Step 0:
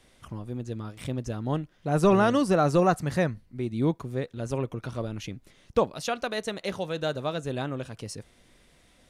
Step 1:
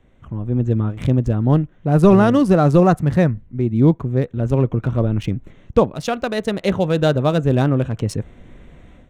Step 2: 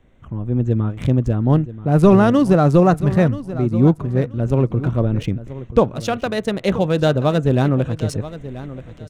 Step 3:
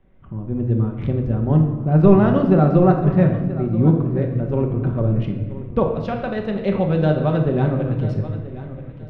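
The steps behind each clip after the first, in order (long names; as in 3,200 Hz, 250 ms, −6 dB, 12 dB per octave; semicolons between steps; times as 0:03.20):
adaptive Wiener filter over 9 samples; low-shelf EQ 350 Hz +10 dB; automatic gain control gain up to 12 dB; level −1 dB
repeating echo 981 ms, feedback 21%, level −15 dB
high-frequency loss of the air 330 metres; rectangular room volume 640 cubic metres, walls mixed, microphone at 1.1 metres; level −4 dB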